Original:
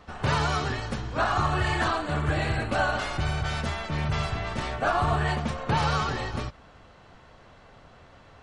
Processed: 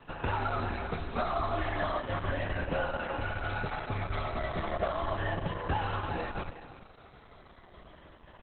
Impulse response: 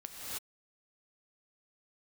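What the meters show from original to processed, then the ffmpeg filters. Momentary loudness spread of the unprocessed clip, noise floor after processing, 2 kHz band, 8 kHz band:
7 LU, −55 dBFS, −7.0 dB, below −35 dB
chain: -filter_complex "[0:a]afftfilt=real='re*pow(10,8/40*sin(2*PI*(1.3*log(max(b,1)*sr/1024/100)/log(2)-(-0.34)*(pts-256)/sr)))':imag='im*pow(10,8/40*sin(2*PI*(1.3*log(max(b,1)*sr/1024/100)/log(2)-(-0.34)*(pts-256)/sr)))':win_size=1024:overlap=0.75,adynamicequalizer=threshold=0.0141:dfrequency=730:dqfactor=2.8:tfrequency=730:tqfactor=2.8:attack=5:release=100:ratio=0.375:range=1.5:mode=boostabove:tftype=bell,acrossover=split=94|1300|2600[link_01][link_02][link_03][link_04];[link_01]acompressor=threshold=-40dB:ratio=4[link_05];[link_02]acompressor=threshold=-31dB:ratio=4[link_06];[link_03]acompressor=threshold=-39dB:ratio=4[link_07];[link_04]acompressor=threshold=-50dB:ratio=4[link_08];[link_05][link_06][link_07][link_08]amix=inputs=4:normalize=0,afreqshift=-50,asplit=2[link_09][link_10];[link_10]adelay=13,volume=-12dB[link_11];[link_09][link_11]amix=inputs=2:normalize=0,aecho=1:1:342:0.266" -ar 48000 -c:a libopus -b:a 8k

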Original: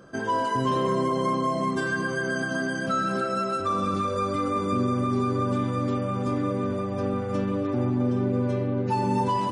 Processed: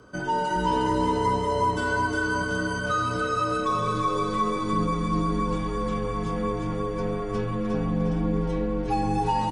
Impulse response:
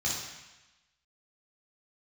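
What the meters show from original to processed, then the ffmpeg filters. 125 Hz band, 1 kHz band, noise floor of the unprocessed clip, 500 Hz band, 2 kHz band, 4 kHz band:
−1.0 dB, +1.5 dB, −30 dBFS, −0.5 dB, +1.5 dB, +2.0 dB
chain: -af "highpass=frequency=180:poles=1,afreqshift=-78,aecho=1:1:358|716|1074|1432|1790|2148|2506:0.631|0.322|0.164|0.0837|0.0427|0.0218|0.0111"

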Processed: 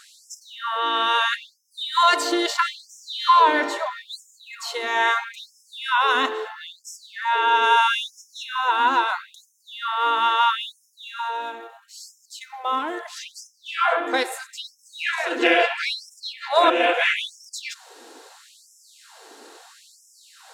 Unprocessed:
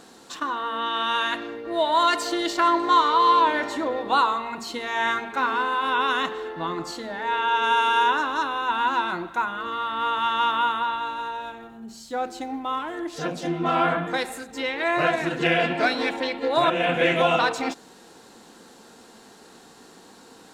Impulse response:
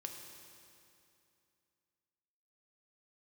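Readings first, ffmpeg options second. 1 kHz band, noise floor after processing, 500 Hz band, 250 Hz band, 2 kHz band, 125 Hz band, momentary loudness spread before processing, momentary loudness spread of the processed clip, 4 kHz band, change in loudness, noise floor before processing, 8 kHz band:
+0.5 dB, −60 dBFS, −1.0 dB, −3.5 dB, +2.0 dB, below −35 dB, 12 LU, 20 LU, +3.0 dB, +2.0 dB, −50 dBFS, +4.0 dB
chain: -af "afftfilt=real='re*gte(b*sr/1024,220*pow(5200/220,0.5+0.5*sin(2*PI*0.76*pts/sr)))':imag='im*gte(b*sr/1024,220*pow(5200/220,0.5+0.5*sin(2*PI*0.76*pts/sr)))':win_size=1024:overlap=0.75,volume=4dB"

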